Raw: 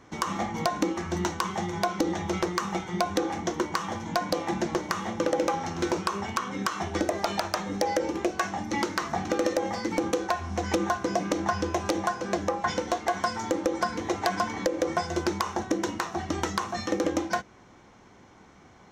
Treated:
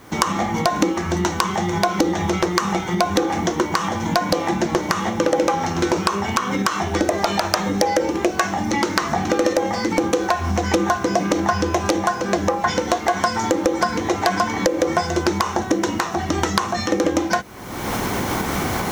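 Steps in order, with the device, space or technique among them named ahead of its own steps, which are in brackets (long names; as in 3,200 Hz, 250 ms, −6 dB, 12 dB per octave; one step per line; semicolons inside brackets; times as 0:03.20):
cheap recorder with automatic gain (white noise bed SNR 36 dB; camcorder AGC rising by 43 dB per second)
level +7.5 dB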